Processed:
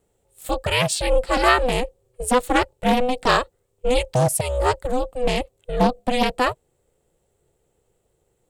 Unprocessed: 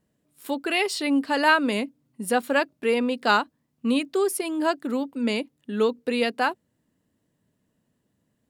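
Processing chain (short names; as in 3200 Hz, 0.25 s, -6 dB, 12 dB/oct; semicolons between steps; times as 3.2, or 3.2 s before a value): thirty-one-band EQ 1250 Hz -8 dB, 2000 Hz -5 dB, 5000 Hz -4 dB, 8000 Hz +9 dB; ring modulator 250 Hz; Doppler distortion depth 0.37 ms; gain +7.5 dB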